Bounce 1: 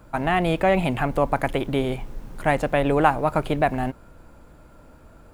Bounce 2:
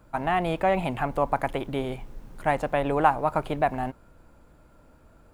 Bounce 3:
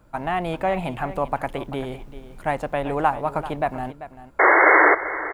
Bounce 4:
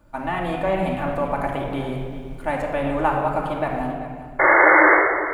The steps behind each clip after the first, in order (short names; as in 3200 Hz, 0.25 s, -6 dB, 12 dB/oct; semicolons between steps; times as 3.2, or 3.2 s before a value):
dynamic EQ 910 Hz, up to +6 dB, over -33 dBFS, Q 1.2; gain -6.5 dB
painted sound noise, 4.39–4.95, 300–2200 Hz -14 dBFS; echo 0.39 s -14 dB
shoebox room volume 2800 m³, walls mixed, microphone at 2.5 m; gain -2.5 dB